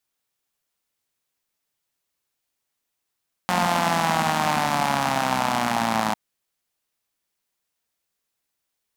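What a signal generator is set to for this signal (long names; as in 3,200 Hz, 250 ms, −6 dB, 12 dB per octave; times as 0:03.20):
pulse-train model of a four-cylinder engine, changing speed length 2.65 s, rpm 5,400, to 3,200, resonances 220/780 Hz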